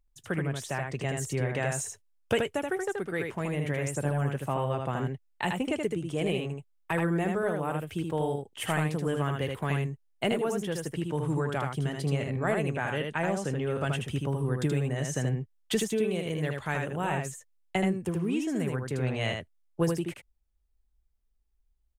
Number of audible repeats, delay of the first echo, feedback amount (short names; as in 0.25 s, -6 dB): 1, 78 ms, no steady repeat